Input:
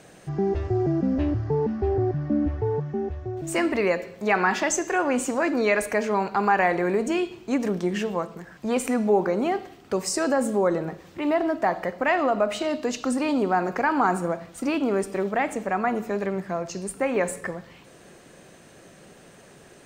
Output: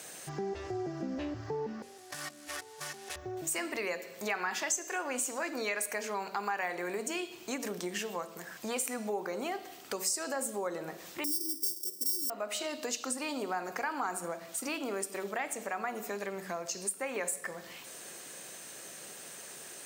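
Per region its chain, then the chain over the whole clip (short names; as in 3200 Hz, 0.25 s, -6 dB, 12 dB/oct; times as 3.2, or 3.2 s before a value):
1.82–3.16 G.711 law mismatch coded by A + weighting filter ITU-R 468 + negative-ratio compressor -45 dBFS
11.24–12.3 sample sorter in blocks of 16 samples + inverse Chebyshev band-stop 700–2900 Hz + comb 2.7 ms, depth 67%
whole clip: RIAA curve recording; de-hum 47.2 Hz, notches 16; compressor 2.5:1, threshold -37 dBFS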